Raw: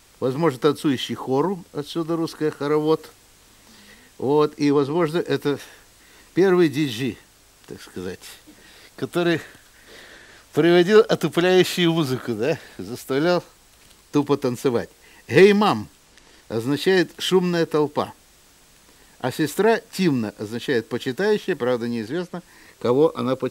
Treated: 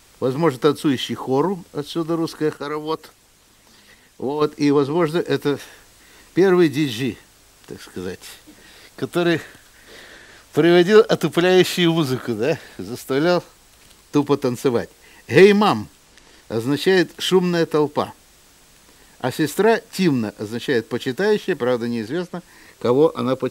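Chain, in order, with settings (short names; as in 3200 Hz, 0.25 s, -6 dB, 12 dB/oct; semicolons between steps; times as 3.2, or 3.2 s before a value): 2.57–4.42 harmonic-percussive split harmonic -10 dB; gain +2 dB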